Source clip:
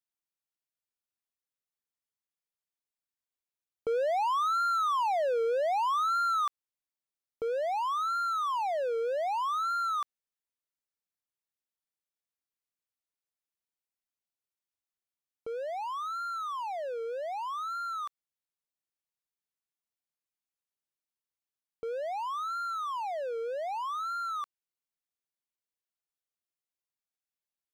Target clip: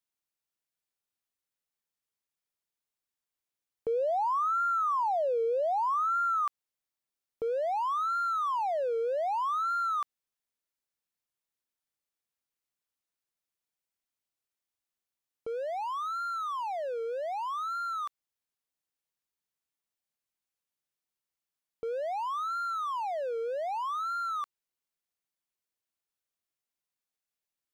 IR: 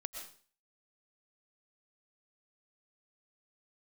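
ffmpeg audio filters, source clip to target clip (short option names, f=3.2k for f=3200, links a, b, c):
-af "asoftclip=type=tanh:threshold=-25.5dB,volume=2dB"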